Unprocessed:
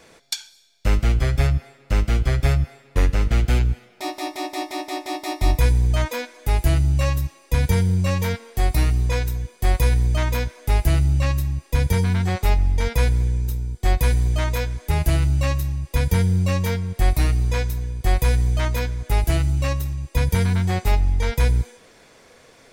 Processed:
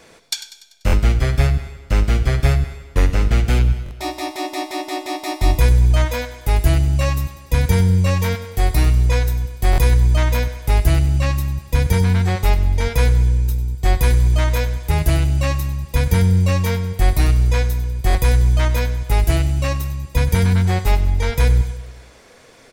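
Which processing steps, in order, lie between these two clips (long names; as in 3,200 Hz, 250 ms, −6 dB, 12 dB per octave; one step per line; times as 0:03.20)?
on a send: repeating echo 97 ms, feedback 55%, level −14 dB
on the sum: buffer that repeats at 0:00.86/0:03.84/0:09.71/0:18.08, samples 1,024, times 2
level +3 dB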